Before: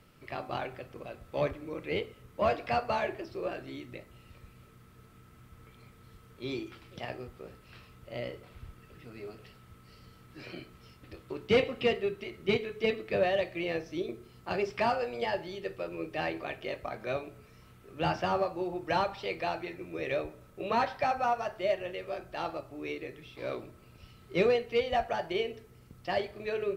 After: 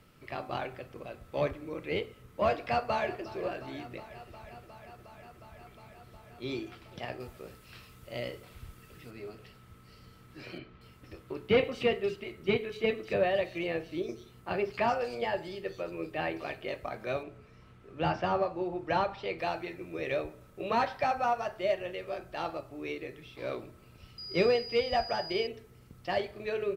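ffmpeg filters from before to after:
ffmpeg -i in.wav -filter_complex "[0:a]asplit=2[link_01][link_02];[link_02]afade=type=in:start_time=2.66:duration=0.01,afade=type=out:start_time=3.33:duration=0.01,aecho=0:1:360|720|1080|1440|1800|2160|2520|2880|3240|3600|3960|4320:0.158489|0.134716|0.114509|0.0973323|0.0827324|0.0703226|0.0597742|0.050808|0.0431868|0.0367088|0.0312025|0.0265221[link_03];[link_01][link_03]amix=inputs=2:normalize=0,asettb=1/sr,asplit=3[link_04][link_05][link_06];[link_04]atrim=end=7.204[link_07];[link_05]atrim=start=7.2:end=9.11,asetpts=PTS-STARTPTS,afade=type=in:duration=0.004:curve=qsin,afade=type=out:start_time=1.906:duration=0.004:curve=qsin,highshelf=frequency=3700:gain=8.5[link_08];[link_06]atrim=start=9.106[link_09];[link_07][link_08]acrossfade=duration=0.004:curve1=hsin:curve2=qsin[link_10];[link_10][link_09]acrossfade=duration=0.004:curve1=qsin:curve2=hsin,asettb=1/sr,asplit=3[link_11][link_12][link_13];[link_11]atrim=end=10.584[link_14];[link_12]atrim=start=10.58:end=16.68,asetpts=PTS-STARTPTS,afade=type=in:duration=0.004:curve=qsin,afade=type=out:start_time=6.096:duration=0.004:curve=qsin,acrossover=split=4400[link_15][link_16];[link_16]adelay=230[link_17];[link_15][link_17]amix=inputs=2:normalize=0,atrim=end_sample=269010[link_18];[link_13]atrim=start=16.676[link_19];[link_14][link_18]acrossfade=duration=0.004:curve1=hsin:curve2=qsin[link_20];[link_20][link_19]acrossfade=duration=0.004:curve1=qsin:curve2=hsin,asettb=1/sr,asplit=3[link_21][link_22][link_23];[link_21]atrim=end=17.234[link_24];[link_22]atrim=start=17.23:end=19.39,asetpts=PTS-STARTPTS,afade=type=in:duration=0.004:curve=qsin,afade=type=out:start_time=2.156:duration=0.004:curve=qsin,aemphasis=mode=reproduction:type=50fm[link_25];[link_23]atrim=start=19.386[link_26];[link_24][link_25]acrossfade=duration=0.004:curve1=hsin:curve2=qsin[link_27];[link_27][link_26]acrossfade=duration=0.004:curve1=qsin:curve2=hsin,asettb=1/sr,asplit=3[link_28][link_29][link_30];[link_28]atrim=end=24.184[link_31];[link_29]atrim=start=24.18:end=25.47,asetpts=PTS-STARTPTS,afade=type=in:duration=0.004:curve=qsin,afade=type=out:start_time=1.286:duration=0.004:curve=qsin,aeval=exprs='val(0)+0.01*sin(2*PI*4900*n/s)':channel_layout=same[link_32];[link_30]atrim=start=25.466[link_33];[link_31][link_32]acrossfade=duration=0.004:curve1=hsin:curve2=qsin[link_34];[link_34][link_33]acrossfade=duration=0.004:curve1=qsin:curve2=hsin" out.wav

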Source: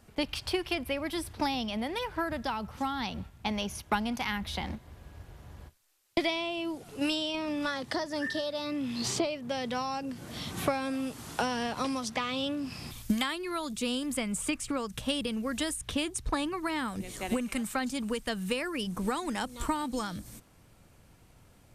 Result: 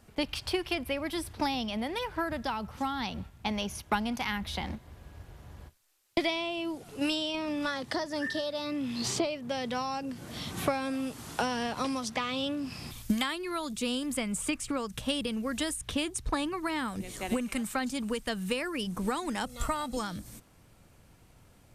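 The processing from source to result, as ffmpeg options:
ffmpeg -i in.wav -filter_complex "[0:a]asettb=1/sr,asplit=3[link_01][link_02][link_03];[link_01]atrim=end=19.464[link_04];[link_02]atrim=start=19.46:end=19.97,asetpts=PTS-STARTPTS,afade=type=in:duration=0.004:curve=qsin,afade=type=out:start_time=0.506:duration=0.004:curve=qsin,aecho=1:1:1.5:0.65,atrim=end_sample=22491[link_05];[link_03]atrim=start=19.966[link_06];[link_04][link_05]acrossfade=duration=0.004:curve1=hsin:curve2=qsin[link_07];[link_07][link_06]acrossfade=duration=0.004:curve1=qsin:curve2=hsin" out.wav

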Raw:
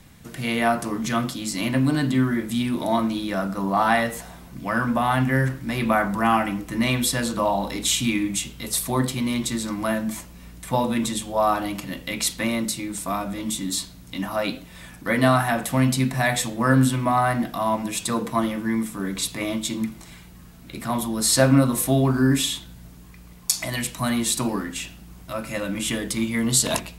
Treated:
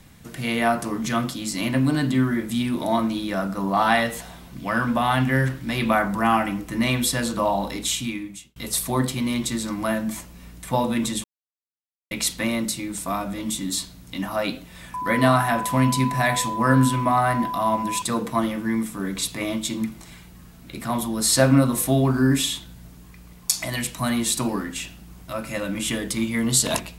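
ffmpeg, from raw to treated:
ffmpeg -i in.wav -filter_complex "[0:a]asettb=1/sr,asplit=3[link_01][link_02][link_03];[link_01]atrim=end=3.734[link_04];[link_02]atrim=start=3.73:end=5.99,asetpts=PTS-STARTPTS,afade=type=in:duration=0.004:curve=qsin,afade=type=out:start_time=2.256:duration=0.004:curve=qsin,equalizer=frequency=3400:width=1.5:gain=5[link_05];[link_03]atrim=start=5.986[link_06];[link_04][link_05]acrossfade=duration=0.004:curve1=hsin:curve2=qsin[link_07];[link_07][link_06]acrossfade=duration=0.004:curve1=qsin:curve2=hsin,asettb=1/sr,asplit=3[link_08][link_09][link_10];[link_08]atrim=end=14.944[link_11];[link_09]atrim=start=14.94:end=18.02,asetpts=PTS-STARTPTS,afade=type=in:duration=0.004:curve=qsin,afade=type=out:start_time=3.076:duration=0.004:curve=qsin,aeval=exprs='val(0)+0.0501*sin(2*PI*1000*n/s)':channel_layout=same[link_12];[link_10]atrim=start=18.016[link_13];[link_11][link_12]acrossfade=duration=0.004:curve1=hsin:curve2=qsin[link_14];[link_14][link_13]acrossfade=duration=0.004:curve1=qsin:curve2=hsin,asplit=4[link_15][link_16][link_17][link_18];[link_15]atrim=end=8.56,asetpts=PTS-STARTPTS,afade=type=out:start_time=7.64:duration=0.92[link_19];[link_16]atrim=start=8.56:end=11.24,asetpts=PTS-STARTPTS,afade=type=in:duration=0.004:curve=hsin,afade=type=out:start_time=2.676:duration=0.004:curve=hsin[link_20];[link_17]atrim=start=11.24:end=12.11,asetpts=PTS-STARTPTS,volume=0[link_21];[link_18]atrim=start=12.11,asetpts=PTS-STARTPTS,afade=type=in:duration=0.004:curve=hsin[link_22];[link_19][link_20][link_21][link_22]concat=n=4:v=0:a=1" out.wav

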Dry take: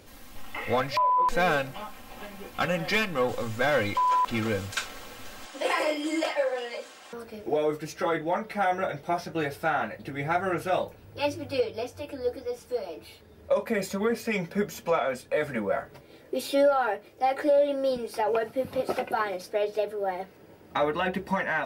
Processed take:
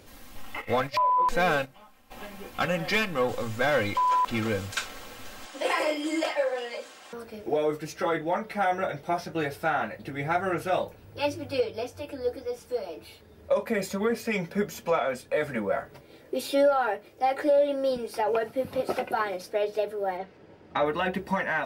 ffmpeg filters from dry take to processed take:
ffmpeg -i in.wav -filter_complex "[0:a]asplit=3[link_01][link_02][link_03];[link_01]afade=type=out:start_time=0.6:duration=0.02[link_04];[link_02]agate=range=-14dB:threshold=-34dB:ratio=16:release=100:detection=peak,afade=type=in:start_time=0.6:duration=0.02,afade=type=out:start_time=2.1:duration=0.02[link_05];[link_03]afade=type=in:start_time=2.1:duration=0.02[link_06];[link_04][link_05][link_06]amix=inputs=3:normalize=0,asettb=1/sr,asplit=3[link_07][link_08][link_09];[link_07]atrim=end=20.174[link_10];[link_08]atrim=start=20.17:end=20.86,asetpts=PTS-STARTPTS,afade=type=in:duration=0.004:curve=qsin,afade=type=out:start_time=0.686:duration=0.004:curve=qsin,lowpass=5000[link_11];[link_09]atrim=start=20.856[link_12];[link_10][link_11]acrossfade=duration=0.004:curve1=hsin:curve2=qsin[link_13];[link_13][link_12]acrossfade=duration=0.004:curve1=qsin:curve2=hsin" out.wav

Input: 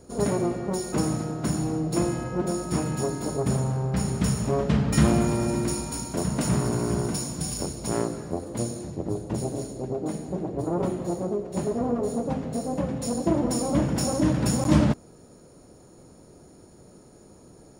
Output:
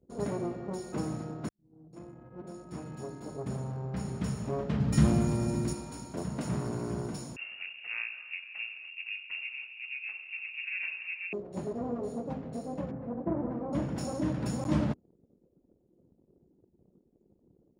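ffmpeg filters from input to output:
ffmpeg -i in.wav -filter_complex "[0:a]asettb=1/sr,asplit=3[link_01][link_02][link_03];[link_01]atrim=end=4.804[link_04];[link_02]atrim=start=4.8:end=5.73,asetpts=PTS-STARTPTS,afade=type=in:duration=0.004:curve=qsin,afade=type=out:start_time=0.926:duration=0.004:curve=qsin,bass=frequency=250:gain=7,treble=frequency=4000:gain=7[link_05];[link_03]atrim=start=5.726[link_06];[link_04][link_05]acrossfade=duration=0.004:curve1=hsin:curve2=qsin[link_07];[link_07][link_06]acrossfade=duration=0.004:curve1=qsin:curve2=hsin,asettb=1/sr,asplit=3[link_08][link_09][link_10];[link_08]atrim=end=7.364[link_11];[link_09]atrim=start=7.36:end=11.33,asetpts=PTS-STARTPTS,afade=type=in:duration=0.004:curve=qsin,afade=type=out:start_time=3.966:duration=0.004:curve=qsin,lowpass=frequency=2500:width_type=q:width=0.5098,lowpass=frequency=2500:width_type=q:width=0.6013,lowpass=frequency=2500:width_type=q:width=0.9,lowpass=frequency=2500:width_type=q:width=2.563,afreqshift=-2900[link_12];[link_10]atrim=start=11.326[link_13];[link_11][link_12]acrossfade=duration=0.004:curve1=hsin:curve2=qsin[link_14];[link_14][link_13]acrossfade=duration=0.004:curve1=qsin:curve2=hsin,asettb=1/sr,asplit=3[link_15][link_16][link_17];[link_15]atrim=end=12.914[link_18];[link_16]atrim=start=12.91:end=13.73,asetpts=PTS-STARTPTS,afade=type=in:duration=0.004:curve=qsin,afade=type=out:start_time=0.816:duration=0.004:curve=qsin,lowpass=frequency=1800:width=0.5412,lowpass=frequency=1800:width=1.3066[link_19];[link_17]atrim=start=13.726[link_20];[link_18][link_19]acrossfade=duration=0.004:curve1=hsin:curve2=qsin[link_21];[link_21][link_20]acrossfade=duration=0.004:curve1=qsin:curve2=hsin,asplit=2[link_22][link_23];[link_22]atrim=end=1.49,asetpts=PTS-STARTPTS,afade=type=out:start_time=1.486:duration=0.004:curve=hsin[link_24];[link_23]atrim=start=1.49,asetpts=PTS-STARTPTS,afade=type=in:duration=2.68[link_25];[link_24][link_25]concat=n=2:v=0:a=1,highpass=62,anlmdn=0.0631,lowpass=frequency=3700:poles=1,volume=-8.5dB" out.wav

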